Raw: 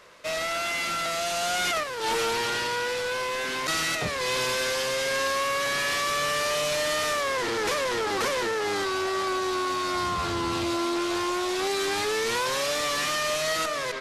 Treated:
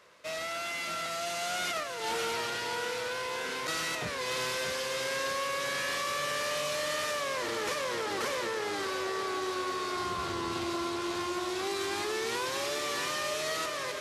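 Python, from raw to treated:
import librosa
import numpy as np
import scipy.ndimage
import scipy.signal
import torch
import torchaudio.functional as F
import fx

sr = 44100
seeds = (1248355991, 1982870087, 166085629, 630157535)

y = scipy.signal.sosfilt(scipy.signal.butter(2, 69.0, 'highpass', fs=sr, output='sos'), x)
y = fx.echo_feedback(y, sr, ms=627, feedback_pct=58, wet_db=-8)
y = y * 10.0 ** (-7.0 / 20.0)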